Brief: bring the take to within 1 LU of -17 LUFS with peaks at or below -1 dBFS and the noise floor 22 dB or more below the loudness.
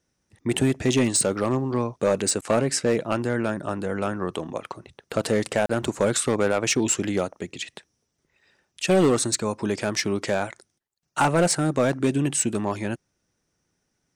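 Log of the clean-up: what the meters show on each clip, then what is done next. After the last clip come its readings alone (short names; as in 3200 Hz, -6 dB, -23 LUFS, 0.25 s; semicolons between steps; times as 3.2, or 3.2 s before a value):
clipped 1.2%; flat tops at -14.0 dBFS; dropouts 1; longest dropout 34 ms; loudness -24.0 LUFS; peak -14.0 dBFS; loudness target -17.0 LUFS
-> clip repair -14 dBFS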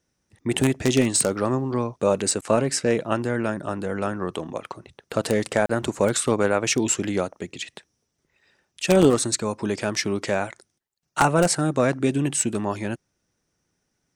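clipped 0.0%; dropouts 1; longest dropout 34 ms
-> interpolate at 5.66, 34 ms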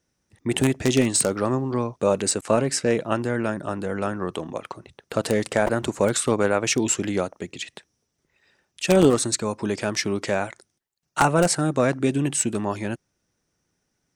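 dropouts 0; loudness -23.0 LUFS; peak -5.0 dBFS; loudness target -17.0 LUFS
-> gain +6 dB; limiter -1 dBFS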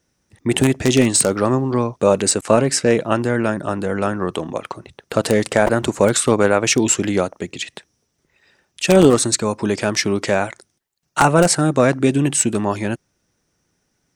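loudness -17.5 LUFS; peak -1.0 dBFS; noise floor -70 dBFS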